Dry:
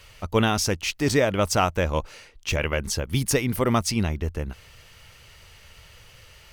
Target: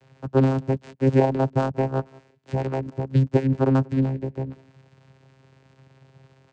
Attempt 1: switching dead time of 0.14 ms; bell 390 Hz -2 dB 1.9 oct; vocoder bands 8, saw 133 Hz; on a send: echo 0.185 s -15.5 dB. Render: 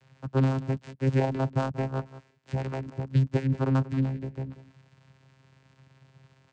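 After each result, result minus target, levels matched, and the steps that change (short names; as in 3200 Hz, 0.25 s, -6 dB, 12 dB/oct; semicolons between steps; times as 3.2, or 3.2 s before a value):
echo-to-direct +8 dB; 500 Hz band -3.0 dB
change: echo 0.185 s -23.5 dB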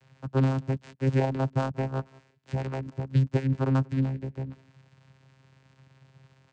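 500 Hz band -3.5 dB
change: bell 390 Hz +6 dB 1.9 oct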